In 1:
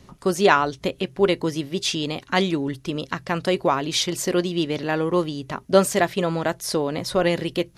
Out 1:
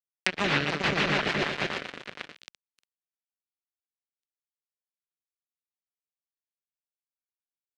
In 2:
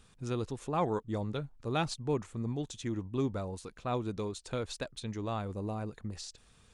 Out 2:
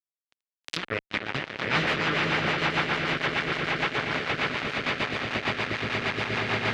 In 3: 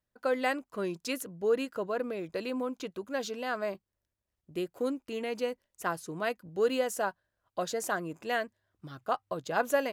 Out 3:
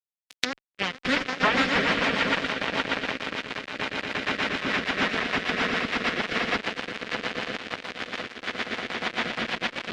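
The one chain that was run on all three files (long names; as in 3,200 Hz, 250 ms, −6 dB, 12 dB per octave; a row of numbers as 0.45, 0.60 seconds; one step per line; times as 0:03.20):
gate on every frequency bin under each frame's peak −15 dB weak
high-shelf EQ 9,300 Hz +6.5 dB
automatic gain control gain up to 15 dB
high-pass filter 59 Hz 6 dB per octave
full-wave rectification
on a send: echo that builds up and dies away 118 ms, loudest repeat 8, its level −8.5 dB
on the sum: fuzz pedal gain 28 dB, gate −26 dBFS
treble cut that deepens with the level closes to 1,500 Hz, closed at −36 dBFS
meter weighting curve D
in parallel at −0.5 dB: downward compressor, threshold −29 dBFS
on the sum: rotating-speaker cabinet horn 6.7 Hz
downward expander −46 dBFS
loudness normalisation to −27 LKFS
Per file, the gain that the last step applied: −2.5, −2.5, 0.0 decibels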